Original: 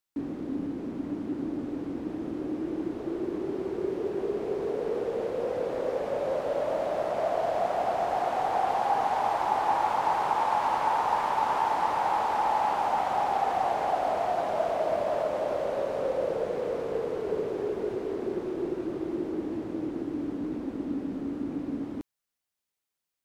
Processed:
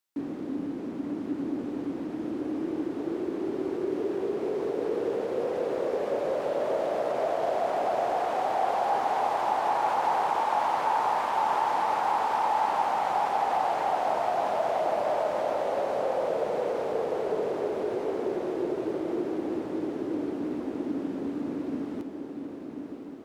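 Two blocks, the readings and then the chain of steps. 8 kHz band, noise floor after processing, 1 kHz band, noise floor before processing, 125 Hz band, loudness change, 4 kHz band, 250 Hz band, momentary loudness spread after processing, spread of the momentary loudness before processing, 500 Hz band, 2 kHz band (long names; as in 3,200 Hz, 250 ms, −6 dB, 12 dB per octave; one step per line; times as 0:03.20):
can't be measured, −38 dBFS, +0.5 dB, below −85 dBFS, −2.5 dB, +0.5 dB, +1.0 dB, +1.0 dB, 8 LU, 8 LU, +1.0 dB, +1.0 dB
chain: in parallel at 0 dB: brickwall limiter −24 dBFS, peak gain reduction 10 dB
on the sum: high-pass filter 180 Hz 6 dB per octave
feedback delay with all-pass diffusion 1,053 ms, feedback 57%, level −7 dB
level −4.5 dB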